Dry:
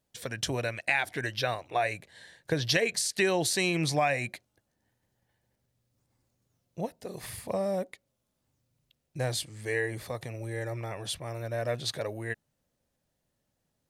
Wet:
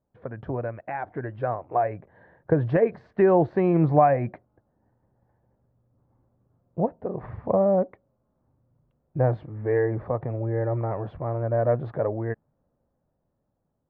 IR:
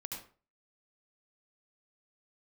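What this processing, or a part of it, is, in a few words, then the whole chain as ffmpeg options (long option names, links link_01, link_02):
action camera in a waterproof case: -af "lowpass=frequency=1200:width=0.5412,lowpass=frequency=1200:width=1.3066,dynaudnorm=framelen=600:gausssize=7:maxgain=7dB,volume=2.5dB" -ar 22050 -c:a aac -b:a 96k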